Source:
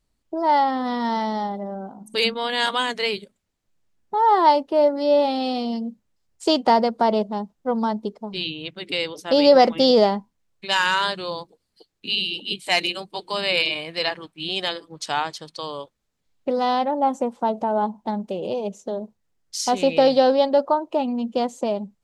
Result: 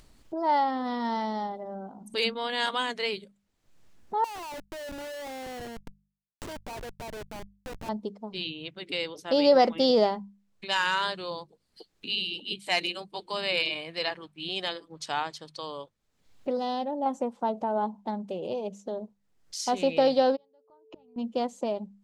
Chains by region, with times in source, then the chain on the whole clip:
4.24–7.89 HPF 430 Hz + compressor 2.5:1, threshold -32 dBFS + Schmitt trigger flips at -33.5 dBFS
16.57–17.06 bell 1300 Hz -10.5 dB 1.2 oct + notch 2200 Hz, Q 5.7
20.35–21.16 flipped gate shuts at -23 dBFS, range -41 dB + whine 440 Hz -61 dBFS + brick-wall FIR low-pass 7000 Hz
whole clip: high shelf 8100 Hz -4 dB; notches 50/100/150/200 Hz; upward compressor, threshold -32 dBFS; gain -6 dB

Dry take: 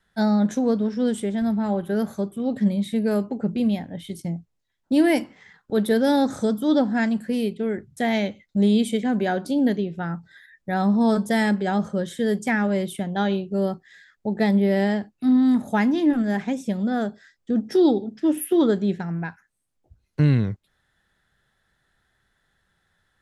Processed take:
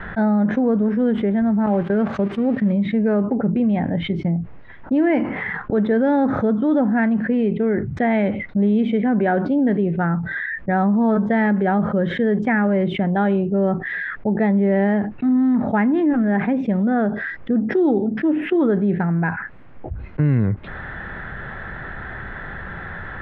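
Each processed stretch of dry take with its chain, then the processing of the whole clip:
1.66–2.72 switching spikes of -26.5 dBFS + gate -30 dBFS, range -12 dB + high shelf 5000 Hz +6.5 dB
whole clip: LPF 2100 Hz 24 dB/oct; fast leveller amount 70%; gain -1 dB

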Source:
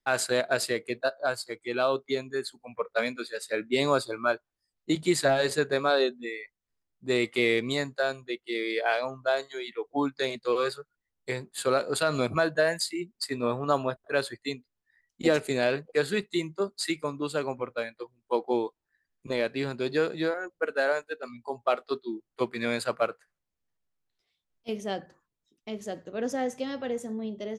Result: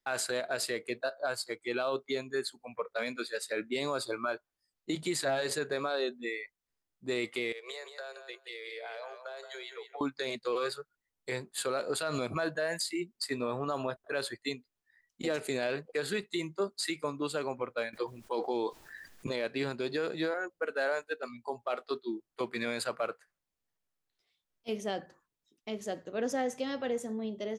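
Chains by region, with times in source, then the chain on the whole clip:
7.52–10.01 steep high-pass 400 Hz 72 dB/oct + compressor 20:1, threshold -38 dBFS + feedback echo 0.175 s, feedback 16%, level -8.5 dB
17.93–19.36 dynamic EQ 4700 Hz, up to +7 dB, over -57 dBFS, Q 1.3 + fast leveller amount 50%
whole clip: low shelf 200 Hz -6 dB; limiter -23 dBFS

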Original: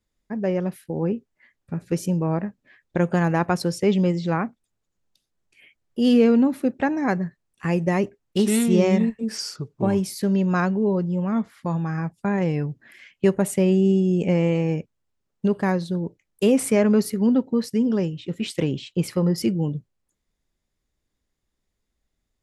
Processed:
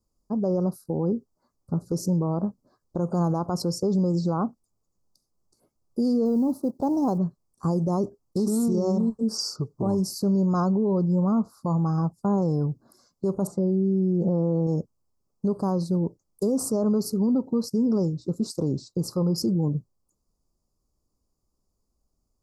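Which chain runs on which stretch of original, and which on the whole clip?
6.25–7.18 G.711 law mismatch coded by A + band shelf 1500 Hz -9.5 dB 1 oct
13.47–14.67 LPF 2700 Hz + comb 5.8 ms, depth 77%
whole clip: elliptic band-stop 1200–4700 Hz, stop band 40 dB; dynamic EQ 9900 Hz, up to -6 dB, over -53 dBFS, Q 2.3; limiter -19.5 dBFS; gain +2.5 dB

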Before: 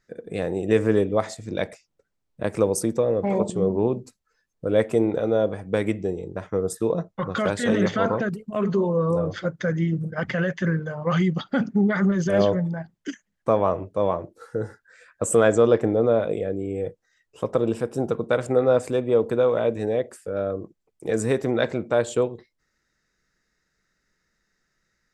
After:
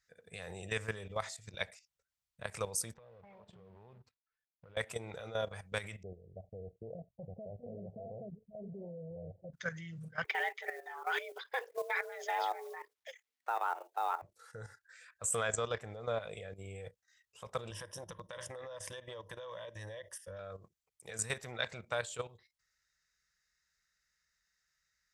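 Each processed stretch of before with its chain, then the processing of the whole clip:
2.94–4.77 G.711 law mismatch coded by A + compressor, threshold -32 dBFS + air absorption 350 m
6.03–9.53 steep low-pass 730 Hz 96 dB/oct + notches 60/120 Hz
10.24–14.22 Bessel low-pass 2900 Hz + frequency shift +250 Hz + companded quantiser 8-bit
17.7–20.39 ripple EQ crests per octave 1.2, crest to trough 14 dB + compressor 12:1, threshold -23 dBFS
whole clip: HPF 44 Hz; passive tone stack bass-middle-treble 10-0-10; level quantiser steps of 12 dB; gain +2.5 dB

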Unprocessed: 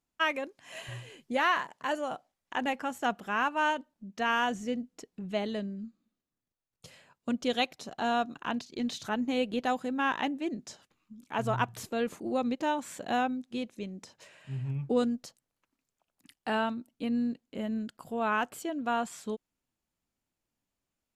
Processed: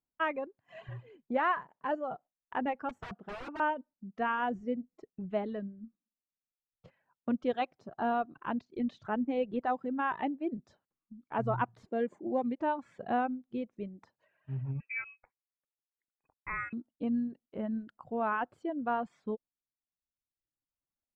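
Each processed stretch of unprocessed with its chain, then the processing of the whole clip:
2.89–3.6 high shelf 9300 Hz +8.5 dB + wrapped overs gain 30 dB + careless resampling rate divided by 2×, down filtered, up zero stuff
11.88–12.58 HPF 45 Hz + bell 7700 Hz +13.5 dB 0.46 oct + notch comb 1300 Hz
14.8–16.73 HPF 290 Hz 24 dB/oct + air absorption 88 m + inverted band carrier 2800 Hz
whole clip: gate -51 dBFS, range -8 dB; LPF 1400 Hz 12 dB/oct; reverb removal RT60 1.3 s

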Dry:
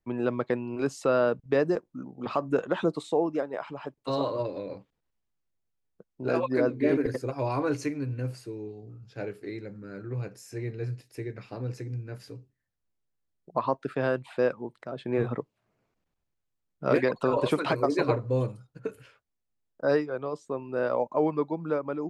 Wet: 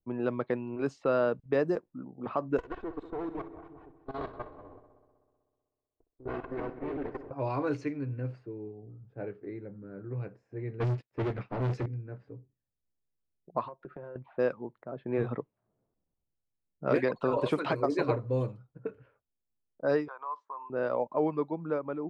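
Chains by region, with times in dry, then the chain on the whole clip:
2.58–7.31 minimum comb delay 2.7 ms + level quantiser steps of 16 dB + multi-head echo 63 ms, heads first and third, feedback 62%, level -14 dB
10.8–11.86 sample leveller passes 5 + upward expander 2.5:1, over -46 dBFS
13.63–14.16 comb 5.6 ms, depth 63% + compressor 12:1, threshold -36 dBFS
20.08–20.7 compressor 12:1, threshold -34 dBFS + resonant high-pass 1000 Hz, resonance Q 8.5
whole clip: low-pass opened by the level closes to 690 Hz, open at -21 dBFS; high shelf 4900 Hz -7.5 dB; gain -3 dB

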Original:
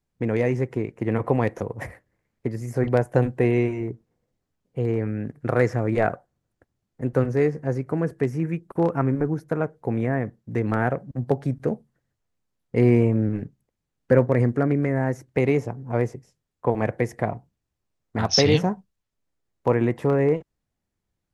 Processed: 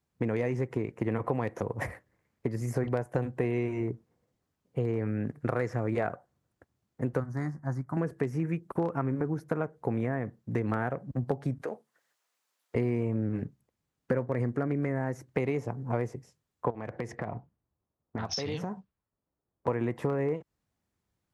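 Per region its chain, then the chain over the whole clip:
7.2–7.97 fixed phaser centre 1100 Hz, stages 4 + upward expander, over -36 dBFS
11.61–12.75 HPF 490 Hz + compressor 4:1, threshold -30 dBFS + mismatched tape noise reduction encoder only
16.7–19.68 low-pass opened by the level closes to 960 Hz, open at -17 dBFS + compressor 12:1, threshold -29 dBFS + hard clip -22 dBFS
whole clip: HPF 53 Hz; bell 1100 Hz +3 dB; compressor, threshold -26 dBFS

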